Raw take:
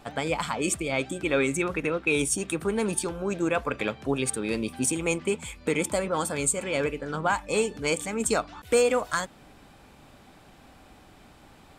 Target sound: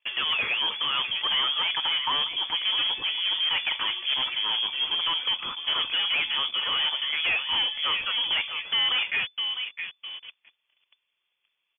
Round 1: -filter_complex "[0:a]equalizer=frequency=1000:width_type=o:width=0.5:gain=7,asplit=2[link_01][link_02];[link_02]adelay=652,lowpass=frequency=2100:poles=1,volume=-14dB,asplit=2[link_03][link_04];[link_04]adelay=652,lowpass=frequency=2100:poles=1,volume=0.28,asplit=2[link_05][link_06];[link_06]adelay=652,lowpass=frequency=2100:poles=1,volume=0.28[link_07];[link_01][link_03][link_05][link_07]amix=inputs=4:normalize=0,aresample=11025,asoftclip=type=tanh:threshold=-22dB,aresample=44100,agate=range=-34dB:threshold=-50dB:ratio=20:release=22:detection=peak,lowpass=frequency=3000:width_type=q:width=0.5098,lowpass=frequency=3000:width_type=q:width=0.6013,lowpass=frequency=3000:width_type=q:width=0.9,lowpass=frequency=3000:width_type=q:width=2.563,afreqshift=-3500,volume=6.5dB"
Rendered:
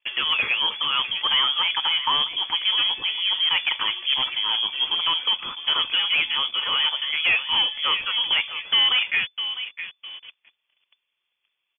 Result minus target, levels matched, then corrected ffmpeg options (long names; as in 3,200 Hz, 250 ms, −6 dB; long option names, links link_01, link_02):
soft clipping: distortion −5 dB
-filter_complex "[0:a]equalizer=frequency=1000:width_type=o:width=0.5:gain=7,asplit=2[link_01][link_02];[link_02]adelay=652,lowpass=frequency=2100:poles=1,volume=-14dB,asplit=2[link_03][link_04];[link_04]adelay=652,lowpass=frequency=2100:poles=1,volume=0.28,asplit=2[link_05][link_06];[link_06]adelay=652,lowpass=frequency=2100:poles=1,volume=0.28[link_07];[link_01][link_03][link_05][link_07]amix=inputs=4:normalize=0,aresample=11025,asoftclip=type=tanh:threshold=-29dB,aresample=44100,agate=range=-34dB:threshold=-50dB:ratio=20:release=22:detection=peak,lowpass=frequency=3000:width_type=q:width=0.5098,lowpass=frequency=3000:width_type=q:width=0.6013,lowpass=frequency=3000:width_type=q:width=0.9,lowpass=frequency=3000:width_type=q:width=2.563,afreqshift=-3500,volume=6.5dB"